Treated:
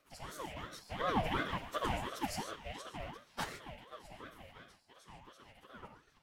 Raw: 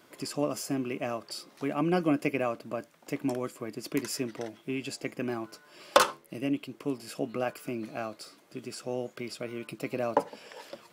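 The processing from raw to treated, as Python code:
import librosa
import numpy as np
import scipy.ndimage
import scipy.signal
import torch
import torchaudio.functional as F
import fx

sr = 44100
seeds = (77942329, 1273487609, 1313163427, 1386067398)

y = fx.rattle_buzz(x, sr, strikes_db=-46.0, level_db=-27.0)
y = fx.doppler_pass(y, sr, speed_mps=6, closest_m=4.4, pass_at_s=3.01)
y = fx.comb_fb(y, sr, f0_hz=450.0, decay_s=0.59, harmonics='all', damping=0.0, mix_pct=40)
y = fx.stretch_vocoder_free(y, sr, factor=0.57)
y = fx.rev_gated(y, sr, seeds[0], gate_ms=170, shape='flat', drr_db=4.5)
y = fx.ring_lfo(y, sr, carrier_hz=610.0, swing_pct=50, hz=2.8)
y = y * librosa.db_to_amplitude(7.0)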